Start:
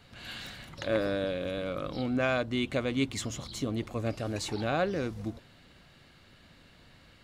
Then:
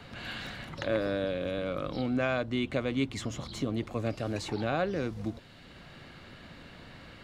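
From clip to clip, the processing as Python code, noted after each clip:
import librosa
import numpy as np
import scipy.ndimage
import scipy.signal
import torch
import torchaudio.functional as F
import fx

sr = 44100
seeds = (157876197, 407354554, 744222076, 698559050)

y = fx.high_shelf(x, sr, hz=5900.0, db=-8.0)
y = fx.band_squash(y, sr, depth_pct=40)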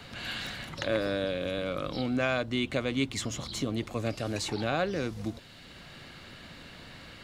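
y = fx.high_shelf(x, sr, hz=2900.0, db=8.5)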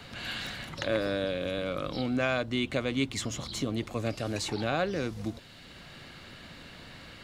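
y = x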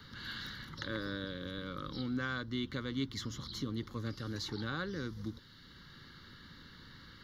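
y = fx.fixed_phaser(x, sr, hz=2500.0, stages=6)
y = y * librosa.db_to_amplitude(-4.5)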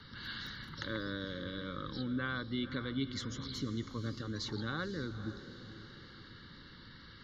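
y = fx.spec_gate(x, sr, threshold_db=-30, keep='strong')
y = fx.echo_diffused(y, sr, ms=499, feedback_pct=45, wet_db=-11.5)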